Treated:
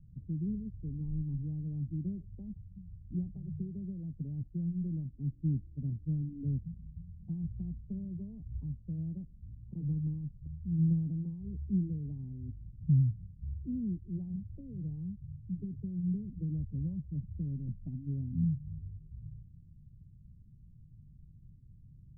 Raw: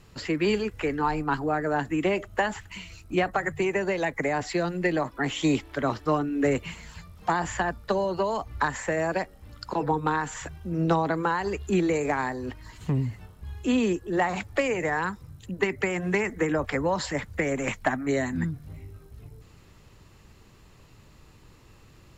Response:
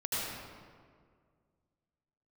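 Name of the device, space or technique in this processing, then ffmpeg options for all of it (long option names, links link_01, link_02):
the neighbour's flat through the wall: -af "lowpass=frequency=180:width=0.5412,lowpass=frequency=180:width=1.3066,equalizer=frequency=150:width_type=o:width=0.77:gain=4,volume=-1.5dB"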